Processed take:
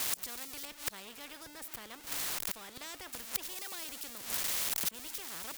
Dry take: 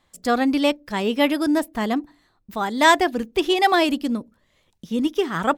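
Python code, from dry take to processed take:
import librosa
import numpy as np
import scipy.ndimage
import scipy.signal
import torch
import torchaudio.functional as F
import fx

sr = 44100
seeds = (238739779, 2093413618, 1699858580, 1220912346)

y = x + 0.5 * 10.0 ** (-18.5 / 20.0) * np.diff(np.sign(x), prepend=np.sign(x[:1]))
y = fx.gate_flip(y, sr, shuts_db=-18.0, range_db=-34)
y = fx.high_shelf(y, sr, hz=3000.0, db=-11.0, at=(0.65, 3.13))
y = fx.spectral_comp(y, sr, ratio=4.0)
y = y * 10.0 ** (2.5 / 20.0)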